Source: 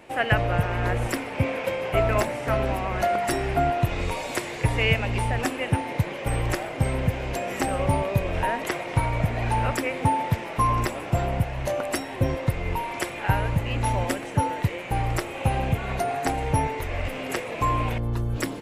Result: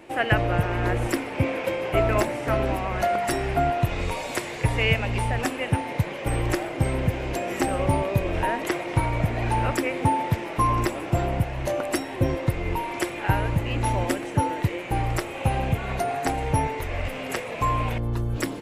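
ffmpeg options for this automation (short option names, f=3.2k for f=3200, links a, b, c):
-af "asetnsamples=n=441:p=0,asendcmd='2.76 equalizer g -0.5;6.24 equalizer g 8;15.04 equalizer g 1;17.06 equalizer g -5;17.95 equalizer g 2.5',equalizer=f=330:t=o:w=0.3:g=8.5"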